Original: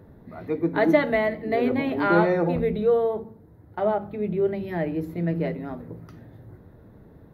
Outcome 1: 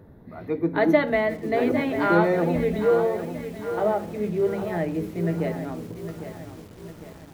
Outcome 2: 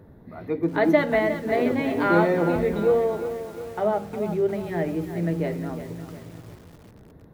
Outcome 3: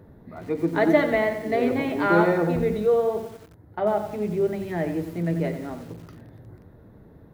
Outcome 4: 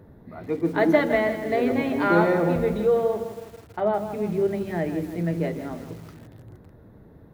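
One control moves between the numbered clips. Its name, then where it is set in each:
feedback echo at a low word length, delay time: 804, 356, 90, 162 milliseconds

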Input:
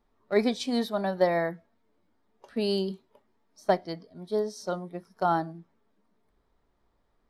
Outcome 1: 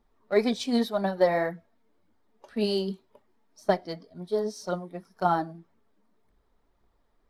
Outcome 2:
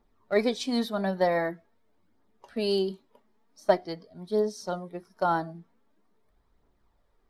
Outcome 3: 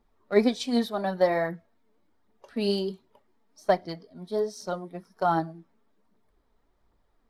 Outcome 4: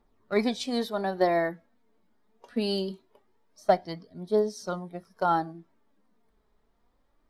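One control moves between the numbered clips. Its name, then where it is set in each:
phase shifter, speed: 1.9, 0.45, 1.3, 0.23 Hertz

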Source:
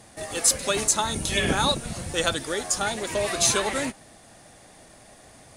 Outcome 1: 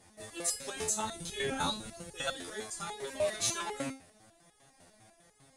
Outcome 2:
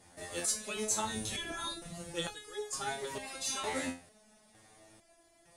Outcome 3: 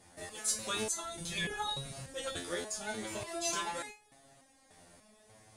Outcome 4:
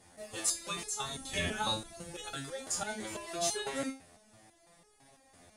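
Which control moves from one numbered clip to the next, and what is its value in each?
step-sequenced resonator, speed: 10, 2.2, 3.4, 6 Hertz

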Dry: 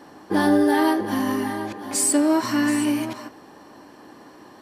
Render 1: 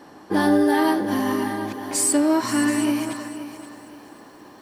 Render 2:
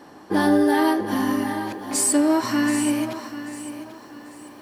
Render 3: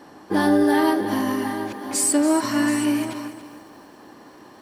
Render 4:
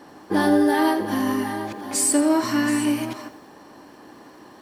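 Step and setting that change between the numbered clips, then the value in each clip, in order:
feedback echo at a low word length, delay time: 523, 789, 282, 84 milliseconds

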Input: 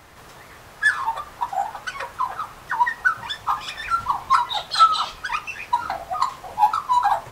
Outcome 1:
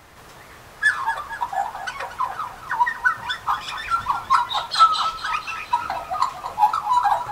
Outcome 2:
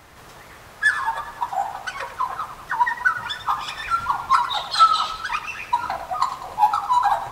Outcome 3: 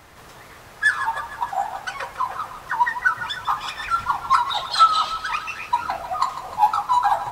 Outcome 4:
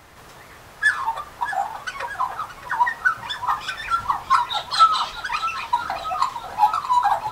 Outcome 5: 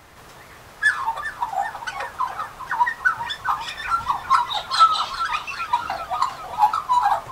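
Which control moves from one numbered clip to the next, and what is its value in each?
feedback echo with a swinging delay time, delay time: 235, 99, 153, 624, 397 milliseconds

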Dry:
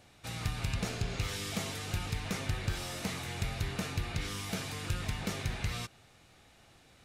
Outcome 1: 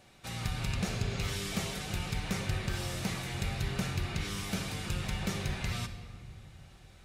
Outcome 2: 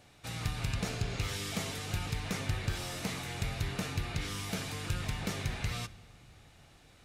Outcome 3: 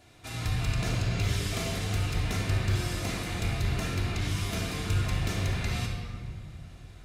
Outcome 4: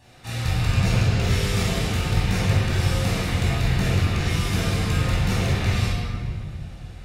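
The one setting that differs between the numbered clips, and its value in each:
rectangular room, microphone at: 1.1, 0.35, 3.1, 9.4 metres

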